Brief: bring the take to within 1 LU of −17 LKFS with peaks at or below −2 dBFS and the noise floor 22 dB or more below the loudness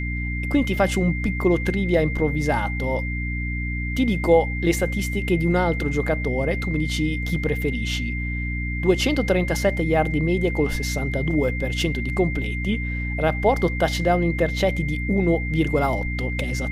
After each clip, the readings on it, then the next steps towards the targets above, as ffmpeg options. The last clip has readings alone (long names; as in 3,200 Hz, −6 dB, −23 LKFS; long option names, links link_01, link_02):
mains hum 60 Hz; hum harmonics up to 300 Hz; level of the hum −25 dBFS; interfering tone 2,100 Hz; level of the tone −30 dBFS; integrated loudness −22.5 LKFS; sample peak −5.0 dBFS; target loudness −17.0 LKFS
→ -af "bandreject=frequency=60:width_type=h:width=6,bandreject=frequency=120:width_type=h:width=6,bandreject=frequency=180:width_type=h:width=6,bandreject=frequency=240:width_type=h:width=6,bandreject=frequency=300:width_type=h:width=6"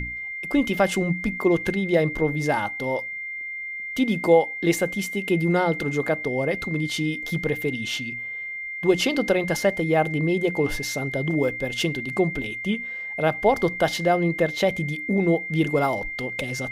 mains hum none found; interfering tone 2,100 Hz; level of the tone −30 dBFS
→ -af "bandreject=frequency=2100:width=30"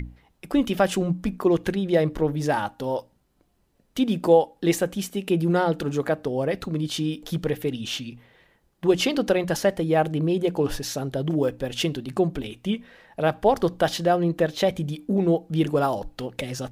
interfering tone none found; integrated loudness −24.5 LKFS; sample peak −6.0 dBFS; target loudness −17.0 LKFS
→ -af "volume=7.5dB,alimiter=limit=-2dB:level=0:latency=1"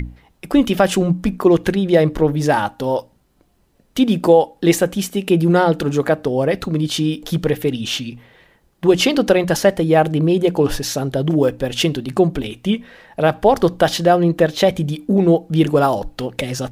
integrated loudness −17.5 LKFS; sample peak −2.0 dBFS; background noise floor −59 dBFS